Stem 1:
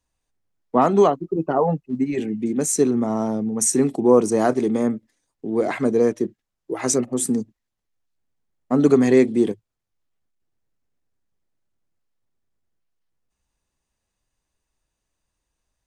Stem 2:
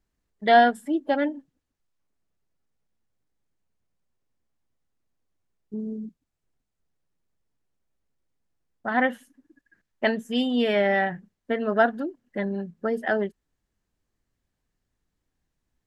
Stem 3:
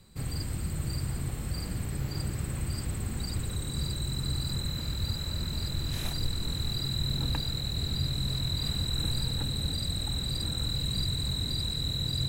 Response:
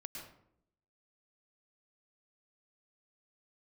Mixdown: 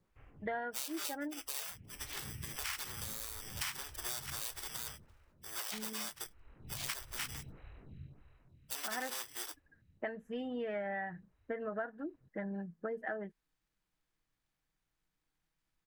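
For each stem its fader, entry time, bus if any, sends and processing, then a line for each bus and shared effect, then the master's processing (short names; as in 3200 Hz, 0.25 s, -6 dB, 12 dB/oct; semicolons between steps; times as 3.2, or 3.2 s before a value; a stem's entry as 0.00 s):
+1.0 dB, 0.00 s, no send, sample sorter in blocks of 16 samples; HPF 970 Hz 24 dB/oct; spectral gate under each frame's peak -20 dB weak
-9.5 dB, 0.00 s, no send, resonant high shelf 2700 Hz -14 dB, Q 1.5; comb 6.3 ms, depth 47%
-11.5 dB, 0.00 s, no send, elliptic low-pass 2900 Hz; photocell phaser 1.6 Hz; auto duck -21 dB, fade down 1.15 s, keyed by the second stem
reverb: off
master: compressor 6:1, threshold -36 dBFS, peak gain reduction 14 dB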